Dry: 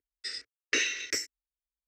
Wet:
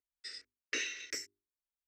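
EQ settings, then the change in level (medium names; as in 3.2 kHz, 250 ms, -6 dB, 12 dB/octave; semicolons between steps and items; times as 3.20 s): hum notches 50/100/150/200/250/300/350/400 Hz; -8.5 dB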